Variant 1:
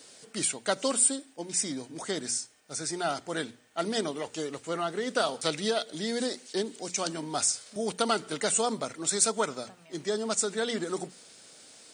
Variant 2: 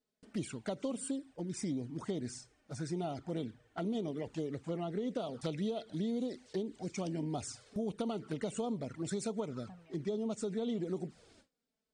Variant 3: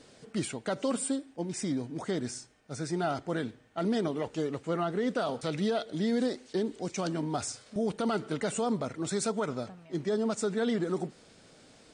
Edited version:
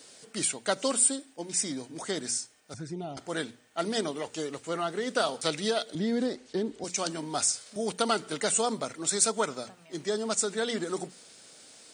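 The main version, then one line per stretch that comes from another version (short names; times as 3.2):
1
2.74–3.17 from 2
5.95–6.84 from 3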